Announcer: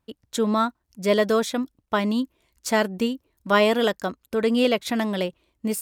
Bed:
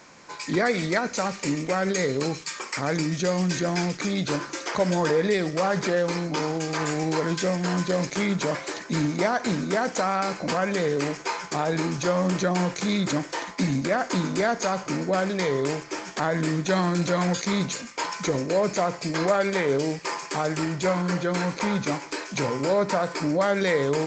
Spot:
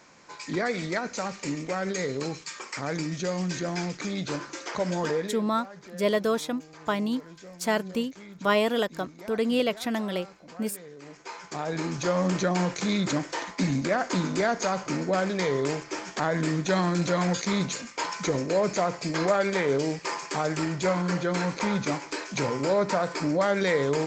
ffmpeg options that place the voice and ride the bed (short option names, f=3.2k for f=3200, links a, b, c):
-filter_complex "[0:a]adelay=4950,volume=-4.5dB[a];[1:a]volume=14.5dB,afade=t=out:st=5.16:d=0.21:silence=0.158489,afade=t=in:st=11.01:d=1.18:silence=0.105925[b];[a][b]amix=inputs=2:normalize=0"